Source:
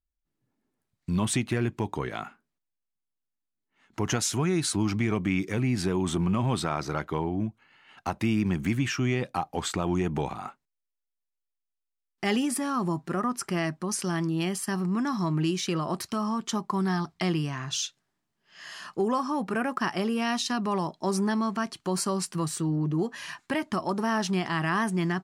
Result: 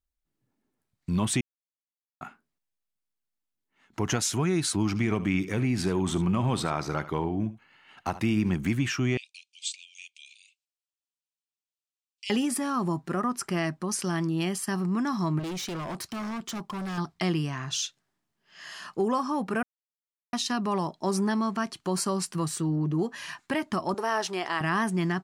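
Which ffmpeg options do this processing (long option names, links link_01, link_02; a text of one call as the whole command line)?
ffmpeg -i in.wav -filter_complex "[0:a]asettb=1/sr,asplit=3[link_01][link_02][link_03];[link_01]atrim=end=4.864[link_04];[link_02]atrim=start=4.86:end=8.55,asetpts=PTS-STARTPTS,afade=type=in:duration=0.004:curve=qsin,afade=type=out:start_time=3.686:duration=0.004:curve=qsin,aecho=1:1:74:0.178,atrim=end_sample=162729[link_05];[link_03]atrim=start=8.546[link_06];[link_04][link_05]acrossfade=duration=0.004:curve1=hsin:curve2=qsin[link_07];[link_07][link_06]acrossfade=duration=0.004:curve1=qsin:curve2=hsin,asettb=1/sr,asplit=3[link_08][link_09][link_10];[link_08]atrim=end=9.174[link_11];[link_09]atrim=start=9.17:end=12.3,asetpts=PTS-STARTPTS,afade=type=in:duration=0.004:curve=qsin,afade=type=out:start_time=3.126:duration=0.004:curve=qsin,asuperpass=centerf=4900:order=20:qfactor=0.71[link_12];[link_10]atrim=start=12.296[link_13];[link_11][link_12]acrossfade=duration=0.004:curve1=hsin:curve2=qsin[link_14];[link_14][link_13]acrossfade=duration=0.004:curve1=qsin:curve2=hsin,asettb=1/sr,asplit=3[link_15][link_16][link_17];[link_15]atrim=end=15.394[link_18];[link_16]atrim=start=15.39:end=16.98,asetpts=PTS-STARTPTS,afade=type=in:duration=0.004:curve=qsin,afade=type=out:start_time=1.586:duration=0.004:curve=qsin,asoftclip=type=hard:threshold=-31.5dB[link_19];[link_17]atrim=start=16.976[link_20];[link_18][link_19]acrossfade=duration=0.004:curve1=hsin:curve2=qsin[link_21];[link_21][link_20]acrossfade=duration=0.004:curve1=qsin:curve2=hsin,asettb=1/sr,asplit=3[link_22][link_23][link_24];[link_22]atrim=end=23.944[link_25];[link_23]atrim=start=23.94:end=24.61,asetpts=PTS-STARTPTS,afade=type=in:duration=0.004:curve=qsin,afade=type=out:start_time=0.666:duration=0.004:curve=qsin,lowshelf=frequency=300:width_type=q:width=1.5:gain=-12.5[link_26];[link_24]atrim=start=24.606[link_27];[link_25][link_26]acrossfade=duration=0.004:curve1=hsin:curve2=qsin[link_28];[link_28][link_27]acrossfade=duration=0.004:curve1=qsin:curve2=hsin,asplit=5[link_29][link_30][link_31][link_32][link_33];[link_29]atrim=end=1.41,asetpts=PTS-STARTPTS,afade=type=out:start_time=1.406:duration=0.004:curve=hsin[link_34];[link_30]atrim=start=1.41:end=2.21,asetpts=PTS-STARTPTS,volume=0[link_35];[link_31]atrim=start=2.21:end=19.63,asetpts=PTS-STARTPTS,afade=type=in:duration=0.004:curve=hsin,afade=type=out:start_time=17.416:duration=0.004:curve=hsin[link_36];[link_32]atrim=start=19.63:end=20.33,asetpts=PTS-STARTPTS,volume=0[link_37];[link_33]atrim=start=20.33,asetpts=PTS-STARTPTS,afade=type=in:duration=0.004:curve=hsin[link_38];[link_34][link_35][link_36][link_37][link_38]concat=n=5:v=0:a=1" out.wav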